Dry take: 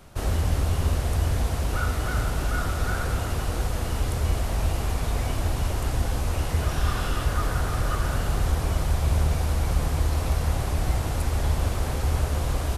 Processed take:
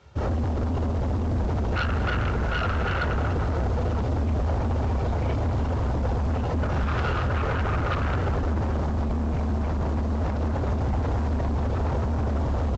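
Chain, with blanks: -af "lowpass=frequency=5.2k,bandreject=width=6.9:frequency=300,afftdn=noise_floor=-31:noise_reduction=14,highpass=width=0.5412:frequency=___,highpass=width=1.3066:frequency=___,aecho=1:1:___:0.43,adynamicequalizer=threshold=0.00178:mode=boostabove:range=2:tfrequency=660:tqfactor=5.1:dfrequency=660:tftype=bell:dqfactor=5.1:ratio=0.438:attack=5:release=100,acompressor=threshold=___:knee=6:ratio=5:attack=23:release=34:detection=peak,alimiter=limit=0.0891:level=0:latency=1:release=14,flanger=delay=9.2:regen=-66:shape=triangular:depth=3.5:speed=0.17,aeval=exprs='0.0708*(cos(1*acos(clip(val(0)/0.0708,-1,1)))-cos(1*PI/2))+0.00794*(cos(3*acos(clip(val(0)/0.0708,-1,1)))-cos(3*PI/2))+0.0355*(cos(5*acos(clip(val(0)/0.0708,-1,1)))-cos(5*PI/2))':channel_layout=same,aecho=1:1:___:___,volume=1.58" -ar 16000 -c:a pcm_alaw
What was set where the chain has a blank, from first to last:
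60, 60, 2.2, 0.0447, 192, 0.15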